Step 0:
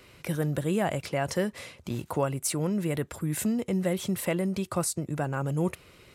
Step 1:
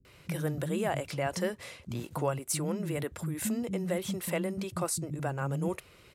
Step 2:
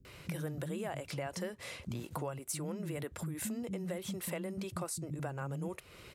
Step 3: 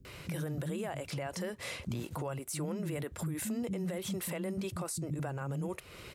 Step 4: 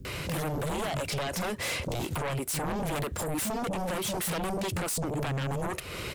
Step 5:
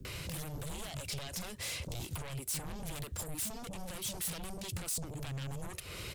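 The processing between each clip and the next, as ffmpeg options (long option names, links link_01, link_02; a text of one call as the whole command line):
ffmpeg -i in.wav -filter_complex "[0:a]acrossover=split=240[link_01][link_02];[link_02]adelay=50[link_03];[link_01][link_03]amix=inputs=2:normalize=0,volume=-2.5dB" out.wav
ffmpeg -i in.wav -af "acompressor=threshold=-42dB:ratio=4,volume=4dB" out.wav
ffmpeg -i in.wav -af "alimiter=level_in=9dB:limit=-24dB:level=0:latency=1:release=33,volume=-9dB,volume=4.5dB" out.wav
ffmpeg -i in.wav -af "aeval=exprs='0.0398*sin(PI/2*2.82*val(0)/0.0398)':channel_layout=same" out.wav
ffmpeg -i in.wav -filter_complex "[0:a]acrossover=split=130|3000[link_01][link_02][link_03];[link_02]acompressor=threshold=-43dB:ratio=6[link_04];[link_01][link_04][link_03]amix=inputs=3:normalize=0,volume=-3.5dB" out.wav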